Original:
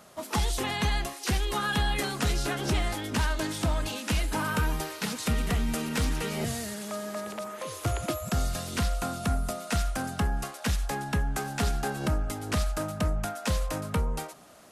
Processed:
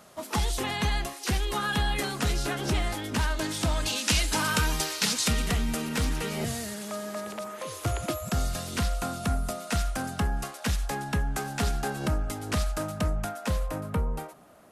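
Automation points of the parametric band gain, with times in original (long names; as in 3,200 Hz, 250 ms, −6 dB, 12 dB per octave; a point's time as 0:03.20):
parametric band 5,600 Hz 2.4 octaves
0:03.32 0 dB
0:04.06 +11.5 dB
0:05.17 +11.5 dB
0:05.78 +0.5 dB
0:13.11 +0.5 dB
0:13.77 −10 dB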